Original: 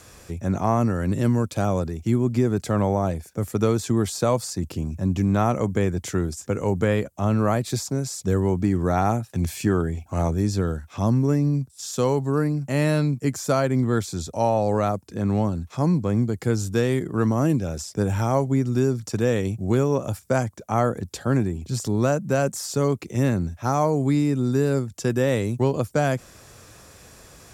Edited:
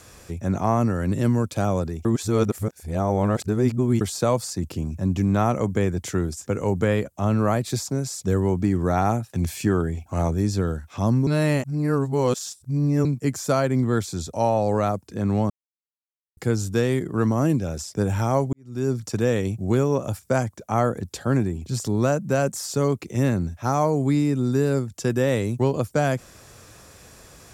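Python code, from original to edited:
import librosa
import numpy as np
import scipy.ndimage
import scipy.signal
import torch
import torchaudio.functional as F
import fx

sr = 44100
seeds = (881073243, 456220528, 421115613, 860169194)

y = fx.edit(x, sr, fx.reverse_span(start_s=2.05, length_s=1.96),
    fx.reverse_span(start_s=11.27, length_s=1.78),
    fx.silence(start_s=15.5, length_s=0.87),
    fx.fade_in_span(start_s=18.53, length_s=0.38, curve='qua'), tone=tone)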